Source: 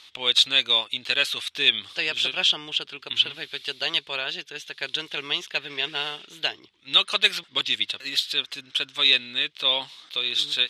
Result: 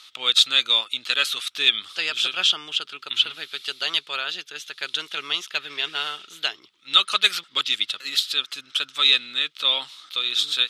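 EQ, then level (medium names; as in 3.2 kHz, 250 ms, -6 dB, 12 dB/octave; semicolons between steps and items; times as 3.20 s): high-pass 140 Hz 12 dB/octave; peaking EQ 1.3 kHz +13 dB 0.28 oct; treble shelf 3.1 kHz +10.5 dB; -4.5 dB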